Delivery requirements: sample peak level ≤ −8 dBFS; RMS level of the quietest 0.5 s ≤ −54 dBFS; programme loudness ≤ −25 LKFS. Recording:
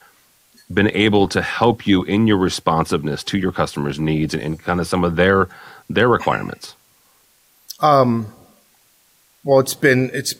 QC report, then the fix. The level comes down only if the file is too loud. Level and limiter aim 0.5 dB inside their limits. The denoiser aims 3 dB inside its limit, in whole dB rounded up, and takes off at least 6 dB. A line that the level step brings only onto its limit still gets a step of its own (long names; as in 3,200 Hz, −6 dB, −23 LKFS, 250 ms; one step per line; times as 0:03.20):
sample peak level −3.0 dBFS: out of spec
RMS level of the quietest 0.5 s −57 dBFS: in spec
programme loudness −17.5 LKFS: out of spec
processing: level −8 dB